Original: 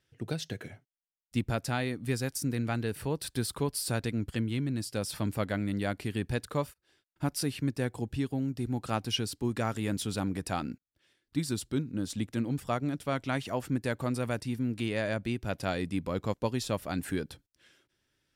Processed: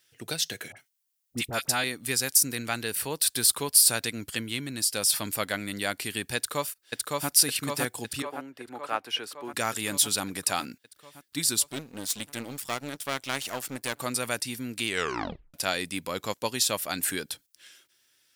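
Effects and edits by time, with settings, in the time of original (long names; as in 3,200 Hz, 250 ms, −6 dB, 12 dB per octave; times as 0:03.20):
0:00.72–0:01.84: all-pass dispersion highs, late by 46 ms, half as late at 1,300 Hz
0:06.36–0:07.30: delay throw 560 ms, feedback 70%, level −1 dB
0:08.22–0:09.54: three-way crossover with the lows and the highs turned down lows −18 dB, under 320 Hz, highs −20 dB, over 2,400 Hz
0:11.69–0:13.98: gain on one half-wave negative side −12 dB
0:14.87: tape stop 0.67 s
whole clip: spectral tilt +4 dB per octave; level +4 dB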